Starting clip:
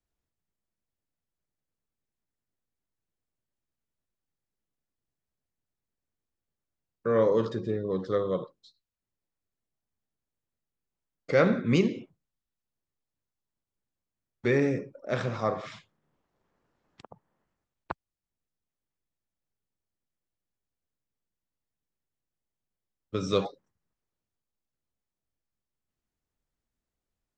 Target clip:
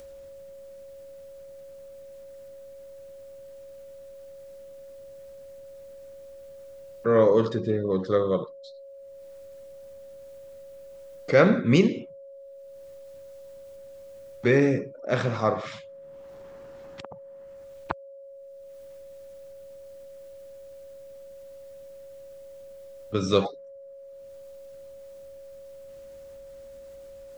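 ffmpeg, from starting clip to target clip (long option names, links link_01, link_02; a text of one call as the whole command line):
ffmpeg -i in.wav -af "acompressor=mode=upward:threshold=-41dB:ratio=2.5,aeval=exprs='val(0)+0.00447*sin(2*PI*550*n/s)':channel_layout=same,volume=4.5dB" out.wav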